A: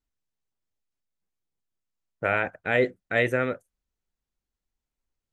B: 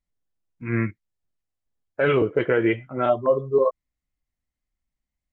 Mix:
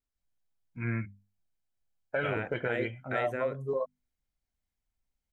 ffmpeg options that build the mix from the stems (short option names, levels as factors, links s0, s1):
-filter_complex "[0:a]volume=0.531[s0];[1:a]bandreject=f=50:t=h:w=6,bandreject=f=100:t=h:w=6,bandreject=f=150:t=h:w=6,bandreject=f=200:t=h:w=6,bandreject=f=250:t=h:w=6,aecho=1:1:1.3:0.48,adelay=150,volume=0.562[s1];[s0][s1]amix=inputs=2:normalize=0,acompressor=threshold=0.0355:ratio=3"